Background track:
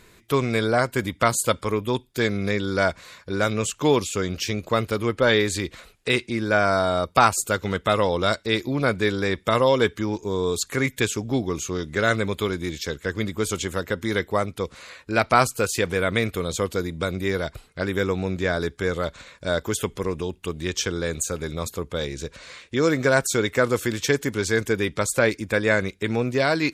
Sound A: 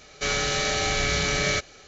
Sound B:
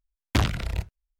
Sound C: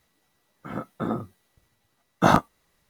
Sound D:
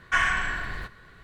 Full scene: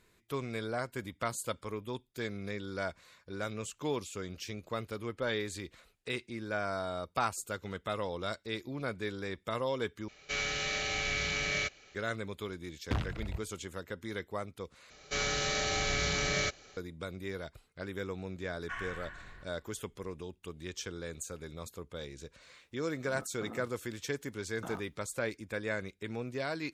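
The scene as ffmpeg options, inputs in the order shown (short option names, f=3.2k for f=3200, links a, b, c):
-filter_complex "[1:a]asplit=2[a][b];[0:a]volume=-15dB[c];[a]equalizer=f=2.5k:w=1.6:g=7.5[d];[2:a]lowpass=f=2.4k:p=1[e];[4:a]highshelf=f=3.9k:g=-7[f];[3:a]acompressor=threshold=-27dB:ratio=6:attack=3.2:release=140:knee=1:detection=peak[g];[c]asplit=3[h][i][j];[h]atrim=end=10.084[k];[d]atrim=end=1.87,asetpts=PTS-STARTPTS,volume=-12dB[l];[i]atrim=start=11.946:end=14.904[m];[b]atrim=end=1.87,asetpts=PTS-STARTPTS,volume=-7dB[n];[j]atrim=start=16.766[o];[e]atrim=end=1.19,asetpts=PTS-STARTPTS,volume=-10dB,afade=t=in:d=0.004:c=hsin,afade=t=out:st=1.186:d=0.004:c=hsin,adelay=12560[p];[f]atrim=end=1.23,asetpts=PTS-STARTPTS,volume=-17dB,afade=t=in:d=0.004:c=hsin,afade=t=out:st=1.226:d=0.004:c=hsin,adelay=18570[q];[g]atrim=end=2.89,asetpts=PTS-STARTPTS,volume=-12.5dB,afade=t=in:d=0.004:c=hsin,afade=t=out:st=2.886:d=0.004:c=hsin,adelay=22410[r];[k][l]acrossfade=d=0.004:c1=hsin:c2=hsin[s];[s][m]acrossfade=d=0.004:c1=hsin:c2=hsin[t];[t][n]acrossfade=d=0.004:c1=hsin:c2=hsin[u];[u][o]acrossfade=d=0.004:c1=hsin:c2=hsin[v];[v][p][q][r]amix=inputs=4:normalize=0"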